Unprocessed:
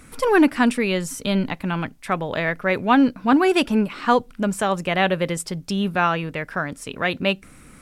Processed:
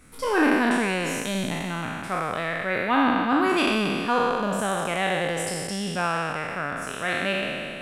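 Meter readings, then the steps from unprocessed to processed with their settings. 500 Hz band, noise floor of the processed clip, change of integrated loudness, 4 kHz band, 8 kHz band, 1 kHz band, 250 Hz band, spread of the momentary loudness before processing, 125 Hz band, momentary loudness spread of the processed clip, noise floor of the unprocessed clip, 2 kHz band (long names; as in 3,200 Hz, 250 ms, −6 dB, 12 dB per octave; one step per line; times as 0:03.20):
−4.0 dB, −35 dBFS, −3.0 dB, −1.5 dB, 0.0 dB, −2.0 dB, −5.0 dB, 10 LU, −5.0 dB, 8 LU, −47 dBFS, −1.0 dB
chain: peak hold with a decay on every bin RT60 2.50 s
level −8.5 dB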